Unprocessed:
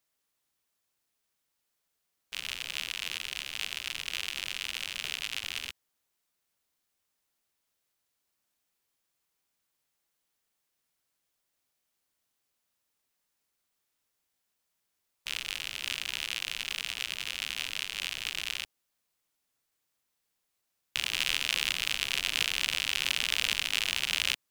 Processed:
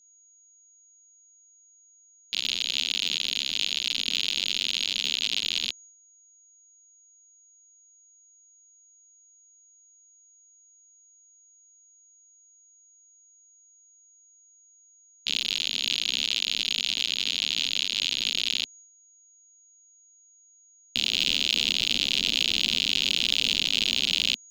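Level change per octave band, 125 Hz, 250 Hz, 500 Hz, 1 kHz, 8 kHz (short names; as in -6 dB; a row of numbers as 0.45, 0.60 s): n/a, +13.5 dB, +6.0 dB, -4.5 dB, +2.5 dB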